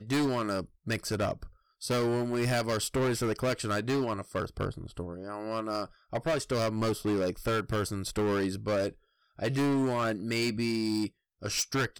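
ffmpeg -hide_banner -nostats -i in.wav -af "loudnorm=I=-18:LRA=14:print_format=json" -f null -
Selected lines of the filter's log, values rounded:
"input_i" : "-30.9",
"input_tp" : "-22.3",
"input_lra" : "2.2",
"input_thresh" : "-41.2",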